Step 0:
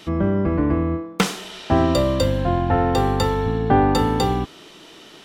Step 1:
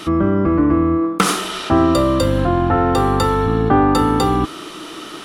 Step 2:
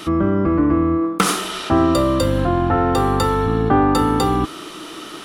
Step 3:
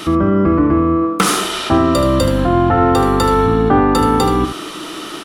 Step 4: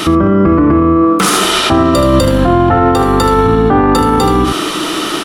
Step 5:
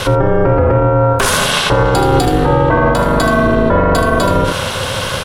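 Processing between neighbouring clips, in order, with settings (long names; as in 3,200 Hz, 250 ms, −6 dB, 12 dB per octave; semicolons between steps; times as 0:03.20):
thirty-one-band graphic EQ 315 Hz +8 dB, 1,250 Hz +12 dB, 10,000 Hz +9 dB; in parallel at −1 dB: compressor whose output falls as the input rises −25 dBFS, ratio −1; on the sum: level −1 dB
high-shelf EQ 11,000 Hz +4 dB; level −1.5 dB
in parallel at −1.5 dB: brickwall limiter −14 dBFS, peak gain reduction 11 dB; on the sum: single-tap delay 77 ms −9 dB
boost into a limiter +12 dB; level −1 dB
ring modulation 210 Hz; level +1 dB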